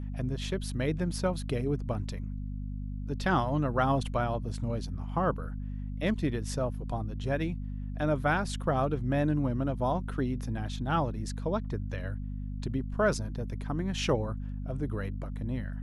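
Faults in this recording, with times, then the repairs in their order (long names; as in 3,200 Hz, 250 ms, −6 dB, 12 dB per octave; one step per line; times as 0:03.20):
mains hum 50 Hz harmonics 5 −36 dBFS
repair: hum removal 50 Hz, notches 5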